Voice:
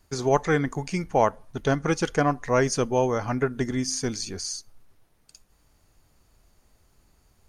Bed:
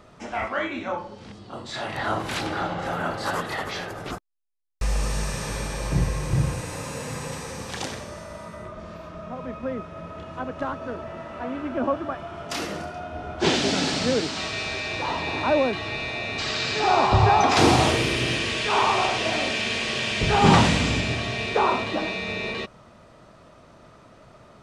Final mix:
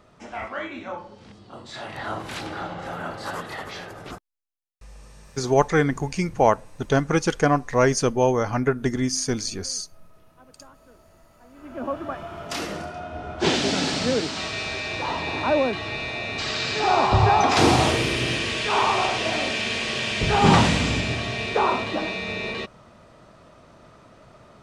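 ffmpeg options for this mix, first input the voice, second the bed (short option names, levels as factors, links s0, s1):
-filter_complex "[0:a]adelay=5250,volume=1.41[s0];[1:a]volume=6.68,afade=t=out:st=4.15:d=0.65:silence=0.149624,afade=t=in:st=11.52:d=0.66:silence=0.0891251[s1];[s0][s1]amix=inputs=2:normalize=0"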